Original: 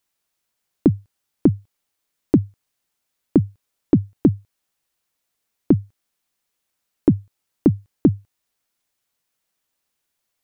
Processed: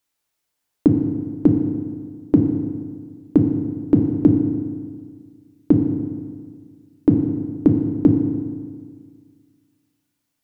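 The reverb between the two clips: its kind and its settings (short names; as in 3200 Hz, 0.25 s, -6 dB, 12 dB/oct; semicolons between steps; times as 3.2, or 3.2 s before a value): FDN reverb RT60 1.8 s, low-frequency decay 1.1×, high-frequency decay 0.7×, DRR 2.5 dB; gain -1.5 dB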